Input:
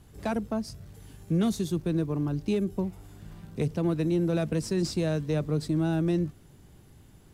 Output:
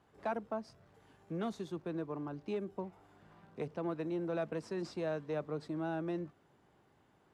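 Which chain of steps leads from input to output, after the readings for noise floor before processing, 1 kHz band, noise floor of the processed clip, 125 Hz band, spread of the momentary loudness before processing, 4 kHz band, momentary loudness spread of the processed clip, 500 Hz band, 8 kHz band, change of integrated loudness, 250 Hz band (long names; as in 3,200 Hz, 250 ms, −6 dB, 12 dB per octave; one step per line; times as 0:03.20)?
−54 dBFS, −3.0 dB, −70 dBFS, −17.0 dB, 14 LU, −14.0 dB, 7 LU, −7.0 dB, below −15 dB, −11.0 dB, −12.5 dB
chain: resonant band-pass 950 Hz, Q 0.89
level −2.5 dB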